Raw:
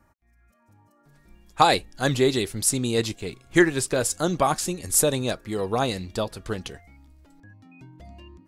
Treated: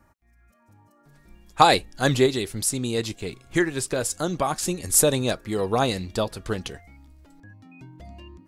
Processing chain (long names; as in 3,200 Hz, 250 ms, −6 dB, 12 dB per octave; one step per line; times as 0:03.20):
0:02.26–0:04.63: downward compressor 1.5 to 1, threshold −31 dBFS, peak gain reduction 7 dB
level +2 dB